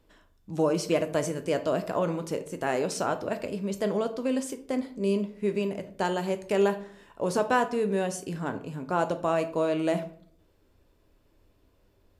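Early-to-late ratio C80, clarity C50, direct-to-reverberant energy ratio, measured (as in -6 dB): 17.0 dB, 13.5 dB, 8.0 dB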